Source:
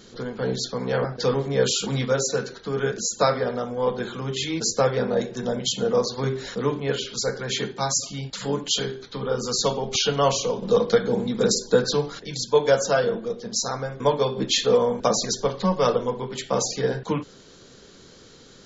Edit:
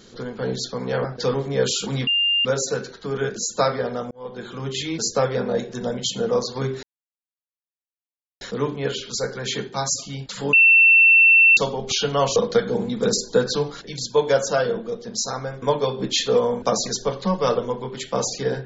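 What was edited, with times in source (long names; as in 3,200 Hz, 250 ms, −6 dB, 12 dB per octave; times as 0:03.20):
0:02.07: insert tone 2,800 Hz −16.5 dBFS 0.38 s
0:03.73–0:04.25: fade in
0:06.45: splice in silence 1.58 s
0:08.57–0:09.61: beep over 2,690 Hz −9.5 dBFS
0:10.40–0:10.74: remove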